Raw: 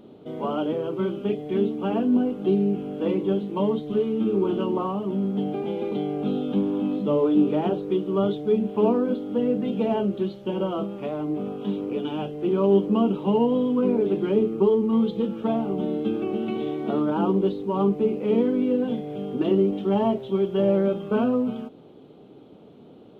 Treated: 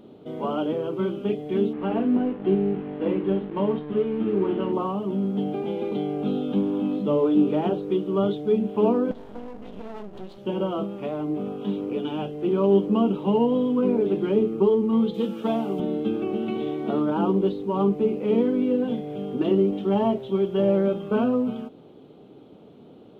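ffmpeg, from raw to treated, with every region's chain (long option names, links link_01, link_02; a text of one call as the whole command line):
ffmpeg -i in.wav -filter_complex "[0:a]asettb=1/sr,asplit=3[link_01][link_02][link_03];[link_01]atrim=end=1.734[link_04];[link_02]atrim=start=1.73:end=4.73,asetpts=PTS-STARTPTS,afade=type=in:duration=0.004:curve=qsin,afade=type=out:start_time=2.996:duration=0.004:curve=qsin,aeval=exprs='sgn(val(0))*max(abs(val(0))-0.00794,0)':channel_layout=same,lowpass=frequency=3100:width=0.5412,lowpass=frequency=3100:width=1.3066,asplit=2[link_05][link_06];[link_06]adelay=47,volume=-12.5dB[link_07];[link_05][link_07]amix=inputs=2:normalize=0,atrim=end_sample=132300[link_08];[link_03]atrim=start=4.726[link_09];[link_04][link_08]acrossfade=duration=0.004:curve1=hsin:curve2=qsin[link_10];[link_10][link_09]acrossfade=duration=0.004:curve1=qsin:curve2=hsin,asettb=1/sr,asplit=3[link_11][link_12][link_13];[link_11]atrim=end=9.114[link_14];[link_12]atrim=start=9.11:end=10.38,asetpts=PTS-STARTPTS,afade=type=in:duration=0.004:curve=qsin,afade=type=out:start_time=1.266:duration=0.004:curve=qsin,acompressor=threshold=-29dB:ratio=10:attack=3.2:release=140:knee=1:detection=peak,bandreject=frequency=50:width_type=h:width=6,bandreject=frequency=100:width_type=h:width=6,bandreject=frequency=150:width_type=h:width=6,bandreject=frequency=200:width_type=h:width=6,bandreject=frequency=250:width_type=h:width=6,bandreject=frequency=300:width_type=h:width=6,bandreject=frequency=350:width_type=h:width=6,aeval=exprs='max(val(0),0)':channel_layout=same[link_15];[link_13]atrim=start=10.376[link_16];[link_14][link_15]acrossfade=duration=0.004:curve1=hsin:curve2=qsin[link_17];[link_17][link_16]acrossfade=duration=0.004:curve1=qsin:curve2=hsin,asettb=1/sr,asplit=3[link_18][link_19][link_20];[link_18]atrim=end=15.144[link_21];[link_19]atrim=start=15.14:end=15.8,asetpts=PTS-STARTPTS,afade=type=in:duration=0.004:curve=qsin,afade=type=out:start_time=0.656:duration=0.004:curve=qsin,highpass=160,highshelf=frequency=3400:gain=11[link_22];[link_20]atrim=start=15.796[link_23];[link_21][link_22]acrossfade=duration=0.004:curve1=hsin:curve2=qsin[link_24];[link_24][link_23]acrossfade=duration=0.004:curve1=qsin:curve2=hsin" out.wav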